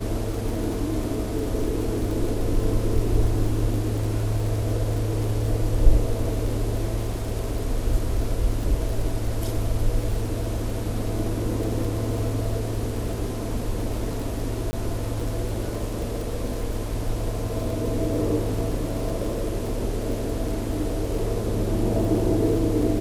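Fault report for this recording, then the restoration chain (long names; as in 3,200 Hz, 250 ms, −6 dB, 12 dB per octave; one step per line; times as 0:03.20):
surface crackle 29 per second −29 dBFS
0:14.71–0:14.73: drop-out 20 ms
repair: click removal
repair the gap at 0:14.71, 20 ms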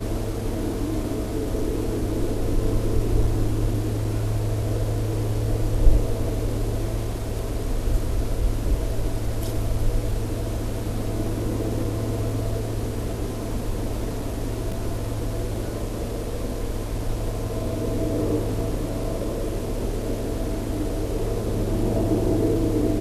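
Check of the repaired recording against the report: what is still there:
none of them is left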